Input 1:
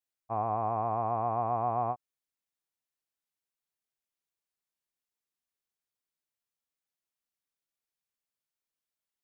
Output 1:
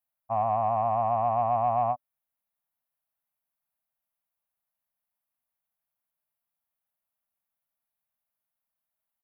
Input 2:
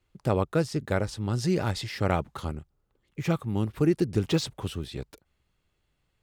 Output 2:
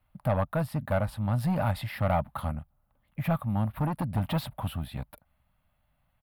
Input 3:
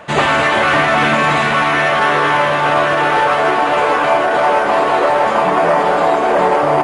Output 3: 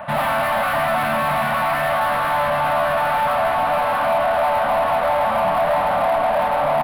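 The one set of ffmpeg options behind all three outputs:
-af "acontrast=41,asoftclip=type=tanh:threshold=-16dB,firequalizer=gain_entry='entry(250,0);entry(380,-23);entry(600,5);entry(1700,-2);entry(4000,-9);entry(6200,-24);entry(11000,4)':delay=0.05:min_phase=1,volume=-3dB"

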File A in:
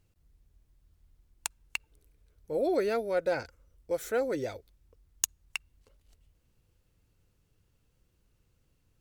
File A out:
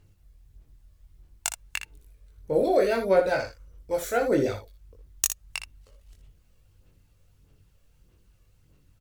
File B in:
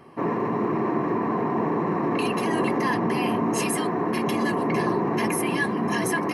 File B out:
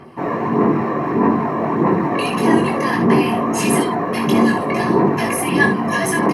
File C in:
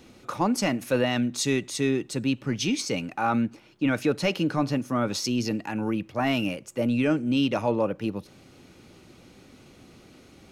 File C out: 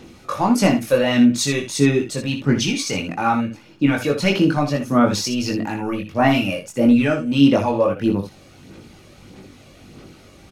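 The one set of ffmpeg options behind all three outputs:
-af "aphaser=in_gain=1:out_gain=1:delay=1.8:decay=0.5:speed=1.6:type=sinusoidal,aecho=1:1:21|61|79:0.708|0.299|0.316,volume=3dB"

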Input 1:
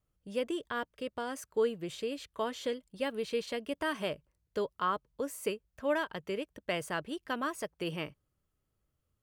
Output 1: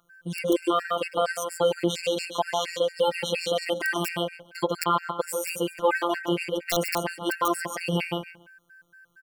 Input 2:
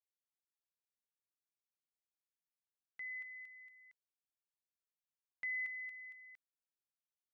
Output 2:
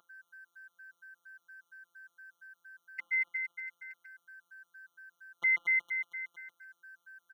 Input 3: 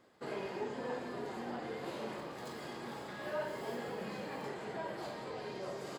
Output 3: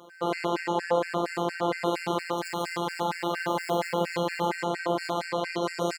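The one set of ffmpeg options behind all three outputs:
-filter_complex "[0:a]equalizer=f=910:t=o:w=0.47:g=3,bandreject=f=1.7k:w=12,asplit=2[a][b];[b]aecho=0:1:142|284|426:0.531|0.101|0.0192[c];[a][c]amix=inputs=2:normalize=0,aeval=exprs='val(0)+0.000891*sin(2*PI*1600*n/s)':c=same,highpass=64,afftfilt=real='hypot(re,im)*cos(PI*b)':imag='0':win_size=1024:overlap=0.75,lowshelf=f=170:g=-8.5,aeval=exprs='(mod(12.6*val(0)+1,2)-1)/12.6':c=same,bandreject=f=105.1:t=h:w=4,bandreject=f=210.2:t=h:w=4,bandreject=f=315.3:t=h:w=4,bandreject=f=420.4:t=h:w=4,bandreject=f=525.5:t=h:w=4,bandreject=f=630.6:t=h:w=4,bandreject=f=735.7:t=h:w=4,bandreject=f=840.8:t=h:w=4,bandreject=f=945.9:t=h:w=4,bandreject=f=1.051k:t=h:w=4,bandreject=f=1.1561k:t=h:w=4,bandreject=f=1.2612k:t=h:w=4,bandreject=f=1.3663k:t=h:w=4,bandreject=f=1.4714k:t=h:w=4,bandreject=f=1.5765k:t=h:w=4,bandreject=f=1.6816k:t=h:w=4,bandreject=f=1.7867k:t=h:w=4,bandreject=f=1.8918k:t=h:w=4,bandreject=f=1.9969k:t=h:w=4,bandreject=f=2.102k:t=h:w=4,bandreject=f=2.2071k:t=h:w=4,bandreject=f=2.3122k:t=h:w=4,bandreject=f=2.4173k:t=h:w=4,bandreject=f=2.5224k:t=h:w=4,alimiter=level_in=28.5dB:limit=-1dB:release=50:level=0:latency=1,afftfilt=real='re*gt(sin(2*PI*4.3*pts/sr)*(1-2*mod(floor(b*sr/1024/1400),2)),0)':imag='im*gt(sin(2*PI*4.3*pts/sr)*(1-2*mod(floor(b*sr/1024/1400),2)),0)':win_size=1024:overlap=0.75,volume=-8.5dB"

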